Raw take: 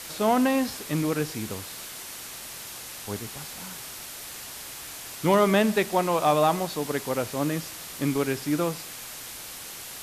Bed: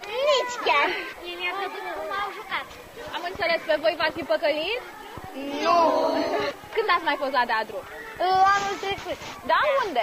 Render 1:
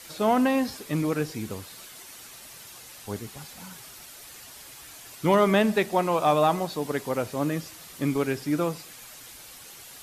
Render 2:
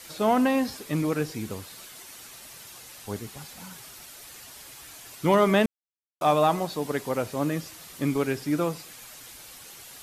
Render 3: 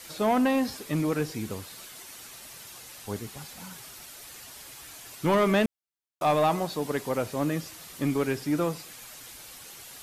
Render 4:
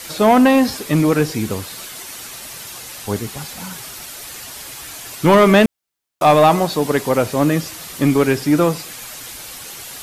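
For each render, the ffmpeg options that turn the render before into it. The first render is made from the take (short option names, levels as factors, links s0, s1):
-af "afftdn=nr=8:nf=-40"
-filter_complex "[0:a]asplit=3[s0][s1][s2];[s0]atrim=end=5.66,asetpts=PTS-STARTPTS,afade=t=out:st=5.656:d=0.004:c=hsin[s3];[s1]atrim=start=5.66:end=6.21,asetpts=PTS-STARTPTS,volume=0[s4];[s2]atrim=start=6.21,asetpts=PTS-STARTPTS,afade=t=in:d=0.004:c=hsin[s5];[s3][s4][s5]concat=n=3:v=0:a=1"
-af "asoftclip=type=tanh:threshold=0.168"
-af "volume=3.98"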